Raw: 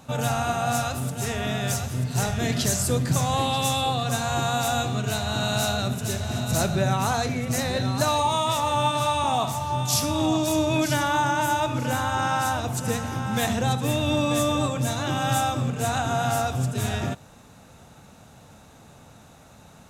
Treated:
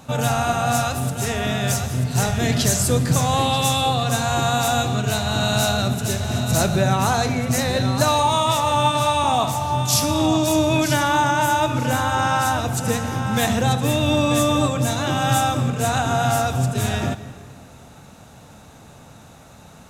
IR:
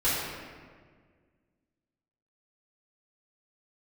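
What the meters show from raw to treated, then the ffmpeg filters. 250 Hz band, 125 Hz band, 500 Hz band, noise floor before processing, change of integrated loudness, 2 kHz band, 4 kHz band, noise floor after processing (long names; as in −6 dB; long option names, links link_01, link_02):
+4.5 dB, +5.0 dB, +4.5 dB, −50 dBFS, +4.5 dB, +4.5 dB, +4.5 dB, −45 dBFS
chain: -filter_complex "[0:a]asplit=2[link_01][link_02];[1:a]atrim=start_sample=2205,adelay=142[link_03];[link_02][link_03]afir=irnorm=-1:irlink=0,volume=-27.5dB[link_04];[link_01][link_04]amix=inputs=2:normalize=0,volume=4.5dB"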